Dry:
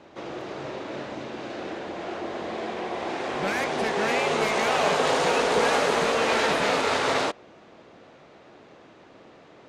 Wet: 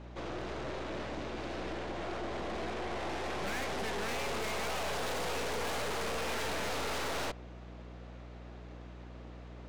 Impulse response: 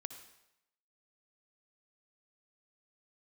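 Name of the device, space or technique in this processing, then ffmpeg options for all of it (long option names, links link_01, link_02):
valve amplifier with mains hum: -af "aeval=exprs='(tanh(56.2*val(0)+0.7)-tanh(0.7))/56.2':channel_layout=same,aeval=exprs='val(0)+0.00447*(sin(2*PI*60*n/s)+sin(2*PI*2*60*n/s)/2+sin(2*PI*3*60*n/s)/3+sin(2*PI*4*60*n/s)/4+sin(2*PI*5*60*n/s)/5)':channel_layout=same"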